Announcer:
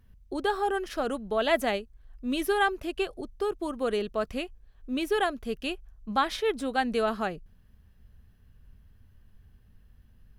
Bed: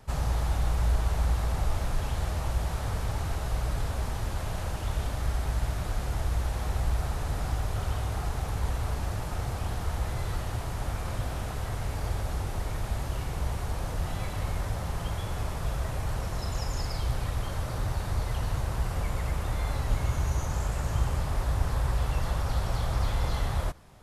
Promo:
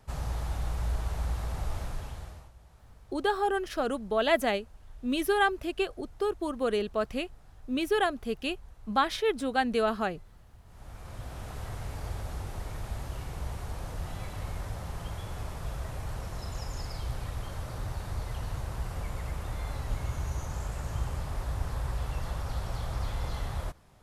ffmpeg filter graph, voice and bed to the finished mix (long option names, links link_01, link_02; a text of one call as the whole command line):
ffmpeg -i stem1.wav -i stem2.wav -filter_complex "[0:a]adelay=2800,volume=0dB[link_01];[1:a]volume=15dB,afade=type=out:start_time=1.8:duration=0.71:silence=0.0944061,afade=type=in:start_time=10.64:duration=0.96:silence=0.0944061[link_02];[link_01][link_02]amix=inputs=2:normalize=0" out.wav